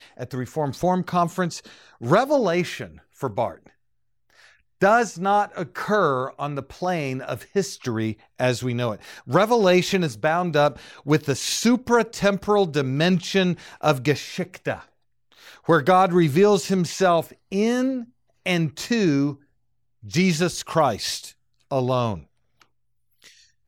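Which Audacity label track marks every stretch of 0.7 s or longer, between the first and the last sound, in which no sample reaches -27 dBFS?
3.500000	4.820000	silence
14.750000	15.690000	silence
19.320000	20.140000	silence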